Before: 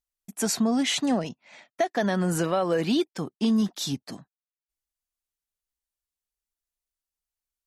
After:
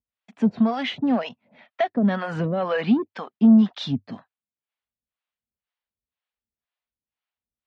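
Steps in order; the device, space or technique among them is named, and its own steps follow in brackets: guitar amplifier with harmonic tremolo (harmonic tremolo 2 Hz, depth 100%, crossover 500 Hz; soft clip -21.5 dBFS, distortion -17 dB; speaker cabinet 75–3500 Hz, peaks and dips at 99 Hz +6 dB, 230 Hz +6 dB, 340 Hz -9 dB); gain +8.5 dB

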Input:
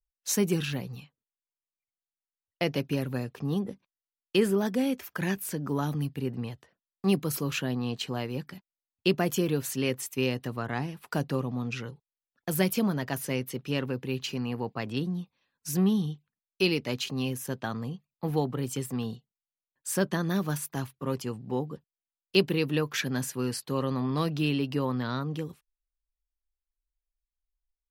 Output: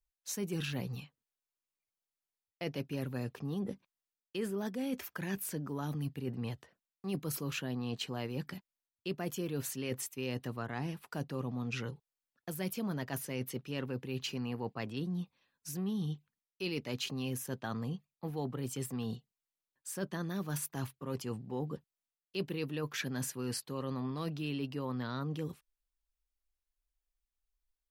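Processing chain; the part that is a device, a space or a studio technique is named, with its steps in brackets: compression on the reversed sound (reverse; compressor 6:1, threshold -34 dBFS, peak gain reduction 16.5 dB; reverse)

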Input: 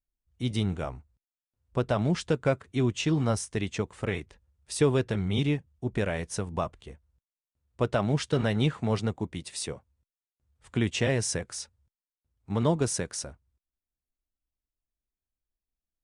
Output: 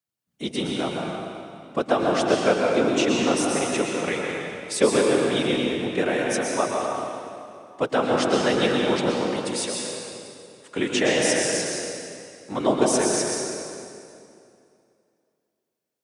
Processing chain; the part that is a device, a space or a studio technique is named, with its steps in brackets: whispering ghost (whisperiser; HPF 310 Hz 12 dB/oct; reverb RT60 2.5 s, pre-delay 0.108 s, DRR -1.5 dB); gain +5.5 dB

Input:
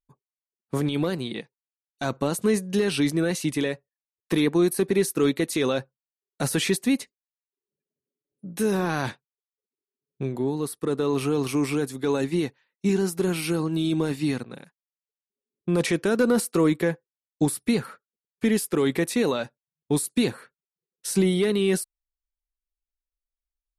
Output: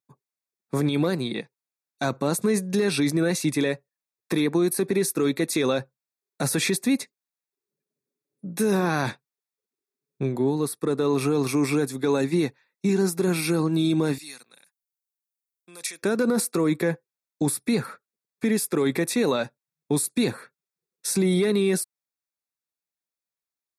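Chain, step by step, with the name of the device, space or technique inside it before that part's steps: PA system with an anti-feedback notch (HPF 100 Hz 24 dB/oct; Butterworth band-stop 3000 Hz, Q 5.5; limiter -17 dBFS, peak gain reduction 6.5 dB); 14.18–16.03 differentiator; gain +3 dB

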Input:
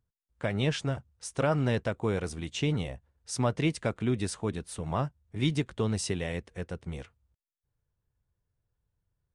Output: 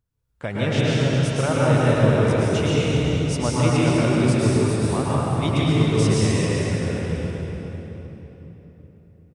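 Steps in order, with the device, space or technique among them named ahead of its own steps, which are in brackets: cave (echo 0.384 s -9.5 dB; reverb RT60 3.8 s, pre-delay 0.105 s, DRR -7.5 dB); gain +1.5 dB

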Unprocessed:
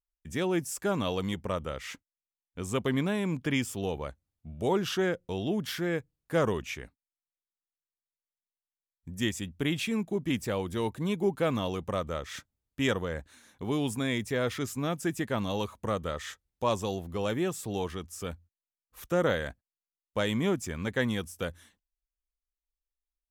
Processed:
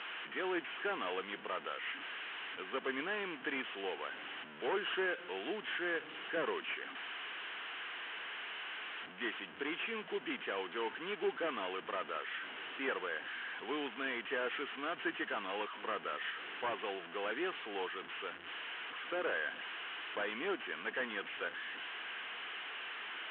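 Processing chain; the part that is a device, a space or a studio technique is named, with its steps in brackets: digital answering machine (BPF 350–3200 Hz; delta modulation 16 kbps, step -39 dBFS; speaker cabinet 390–4200 Hz, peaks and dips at 570 Hz -10 dB, 860 Hz -3 dB, 1600 Hz +6 dB, 3000 Hz +9 dB); gain -1 dB

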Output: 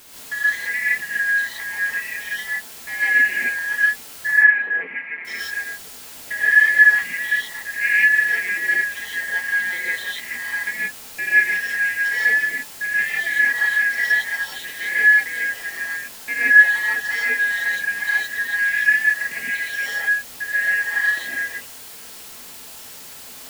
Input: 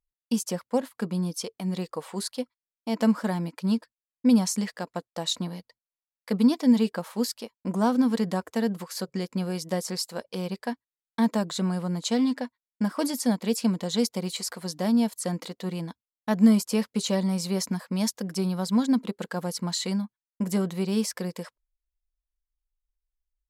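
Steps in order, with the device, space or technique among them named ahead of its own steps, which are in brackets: split-band scrambled radio (four-band scrambler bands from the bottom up 2143; BPF 350–2800 Hz; white noise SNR 17 dB); 4.27–5.25 Chebyshev band-pass 160–2500 Hz, order 4; non-linear reverb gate 0.19 s rising, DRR -7.5 dB; gain -2 dB

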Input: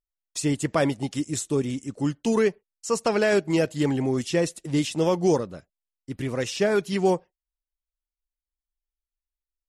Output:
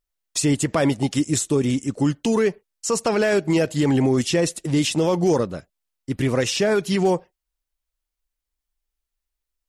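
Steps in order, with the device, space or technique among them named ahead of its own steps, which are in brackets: clipper into limiter (hard clip -13 dBFS, distortion -34 dB; limiter -19.5 dBFS, peak gain reduction 6.5 dB); gain +8 dB

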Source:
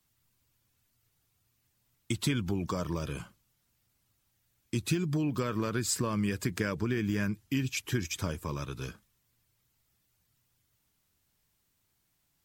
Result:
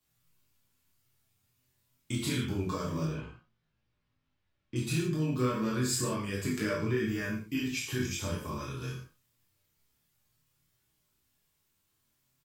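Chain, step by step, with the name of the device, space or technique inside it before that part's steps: double-tracked vocal (doubler 32 ms -4.5 dB; chorus 0.28 Hz, delay 18 ms, depth 5.9 ms); 3.05–4.76 air absorption 250 m; non-linear reverb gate 0.18 s falling, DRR -2 dB; gain -2.5 dB

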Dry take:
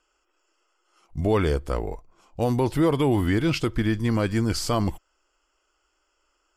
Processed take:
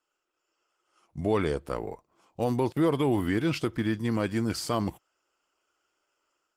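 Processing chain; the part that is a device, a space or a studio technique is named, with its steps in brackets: 2.72–3.15 gate -29 dBFS, range -23 dB; video call (HPF 120 Hz 12 dB/oct; AGC gain up to 5.5 dB; gain -8.5 dB; Opus 24 kbps 48000 Hz)

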